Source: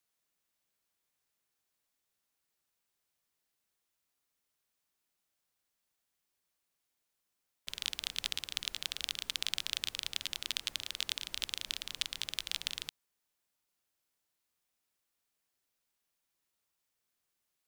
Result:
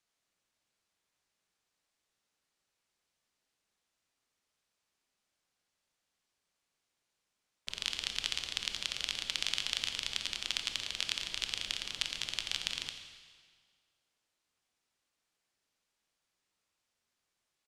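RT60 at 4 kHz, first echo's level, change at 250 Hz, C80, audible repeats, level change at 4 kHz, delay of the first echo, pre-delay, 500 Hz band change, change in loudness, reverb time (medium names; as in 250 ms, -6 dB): 1.6 s, -14.5 dB, +3.5 dB, 8.0 dB, 1, +2.0 dB, 87 ms, 22 ms, +3.5 dB, +2.0 dB, 1.8 s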